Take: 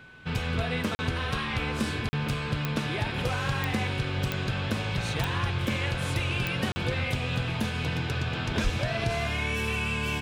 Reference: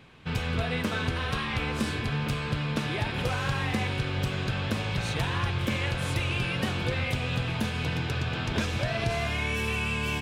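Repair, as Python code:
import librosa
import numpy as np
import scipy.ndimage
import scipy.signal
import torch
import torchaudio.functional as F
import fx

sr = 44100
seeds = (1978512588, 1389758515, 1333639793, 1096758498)

y = fx.fix_declick_ar(x, sr, threshold=10.0)
y = fx.notch(y, sr, hz=1500.0, q=30.0)
y = fx.fix_deplosive(y, sr, at_s=(8.63,))
y = fx.fix_interpolate(y, sr, at_s=(0.95, 2.09, 6.72), length_ms=40.0)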